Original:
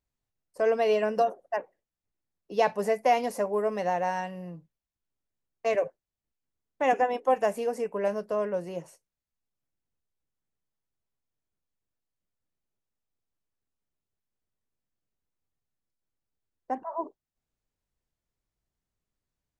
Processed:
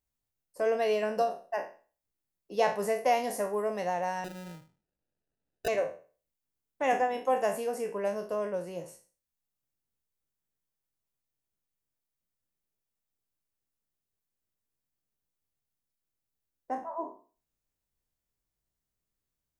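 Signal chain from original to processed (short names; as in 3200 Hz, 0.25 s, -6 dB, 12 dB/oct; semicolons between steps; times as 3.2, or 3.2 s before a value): spectral trails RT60 0.38 s; high shelf 8500 Hz +10 dB; 4.24–5.68 sample-rate reducer 1100 Hz, jitter 0%; gain -4 dB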